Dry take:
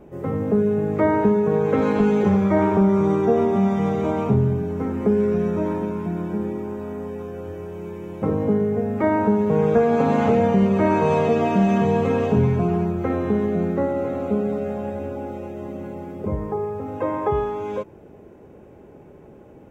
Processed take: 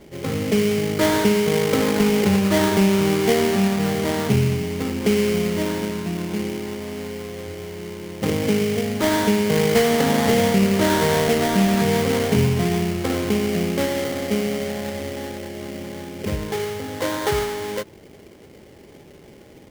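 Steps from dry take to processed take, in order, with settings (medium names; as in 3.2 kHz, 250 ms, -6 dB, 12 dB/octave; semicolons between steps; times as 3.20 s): sample-rate reducer 2.6 kHz, jitter 20%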